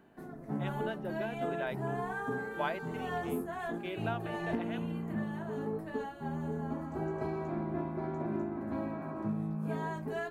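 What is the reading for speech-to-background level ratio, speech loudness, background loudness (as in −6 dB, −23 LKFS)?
−5.0 dB, −42.0 LKFS, −37.0 LKFS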